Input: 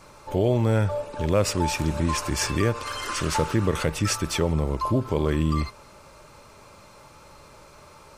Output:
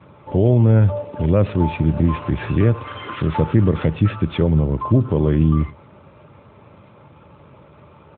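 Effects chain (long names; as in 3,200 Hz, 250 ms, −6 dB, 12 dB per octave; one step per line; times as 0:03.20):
low-shelf EQ 350 Hz +11.5 dB
slap from a distant wall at 17 metres, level −23 dB
AMR narrowband 12.2 kbit/s 8,000 Hz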